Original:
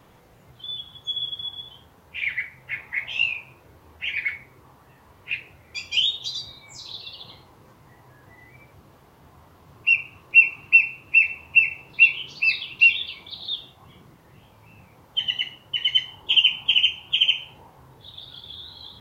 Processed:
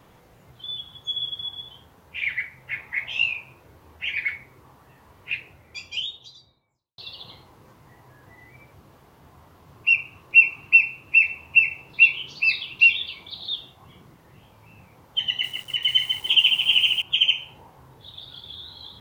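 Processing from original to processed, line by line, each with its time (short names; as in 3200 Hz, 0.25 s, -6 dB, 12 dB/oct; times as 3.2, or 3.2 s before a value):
5.31–6.98 studio fade out
15.29–17.02 lo-fi delay 0.146 s, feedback 55%, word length 7-bit, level -5 dB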